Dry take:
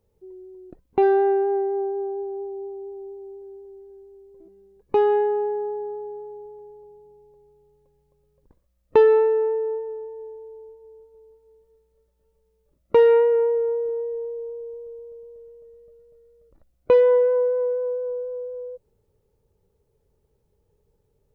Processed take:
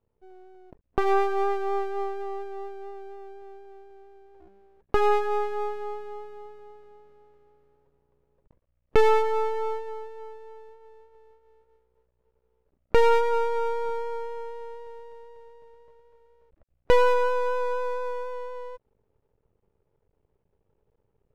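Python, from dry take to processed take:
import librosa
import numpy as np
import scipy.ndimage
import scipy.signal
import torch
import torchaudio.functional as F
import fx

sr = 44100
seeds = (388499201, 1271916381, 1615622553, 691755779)

p1 = scipy.signal.sosfilt(scipy.signal.butter(6, 2900.0, 'lowpass', fs=sr, output='sos'), x)
p2 = fx.rider(p1, sr, range_db=4, speed_s=0.5)
p3 = p1 + (p2 * librosa.db_to_amplitude(-1.0))
p4 = fx.cheby_harmonics(p3, sr, harmonics=(4, 6), levels_db=(-22, -12), full_scale_db=1.0)
p5 = np.maximum(p4, 0.0)
y = p5 * librosa.db_to_amplitude(-7.5)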